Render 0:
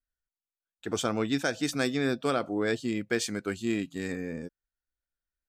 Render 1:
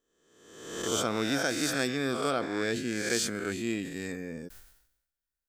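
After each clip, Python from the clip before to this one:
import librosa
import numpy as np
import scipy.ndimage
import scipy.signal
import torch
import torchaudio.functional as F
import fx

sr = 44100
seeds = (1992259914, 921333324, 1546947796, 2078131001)

y = fx.spec_swells(x, sr, rise_s=1.0)
y = fx.high_shelf(y, sr, hz=6100.0, db=6.0)
y = fx.sustainer(y, sr, db_per_s=73.0)
y = y * librosa.db_to_amplitude(-4.0)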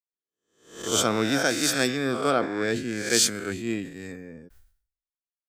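y = fx.band_widen(x, sr, depth_pct=100)
y = y * librosa.db_to_amplitude(4.5)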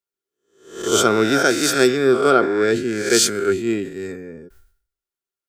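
y = fx.small_body(x, sr, hz=(390.0, 1400.0), ring_ms=65, db=14)
y = y * librosa.db_to_amplitude(4.0)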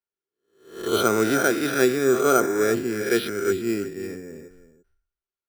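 y = x + 10.0 ** (-14.0 / 20.0) * np.pad(x, (int(340 * sr / 1000.0), 0))[:len(x)]
y = np.repeat(scipy.signal.resample_poly(y, 1, 6), 6)[:len(y)]
y = y * librosa.db_to_amplitude(-4.0)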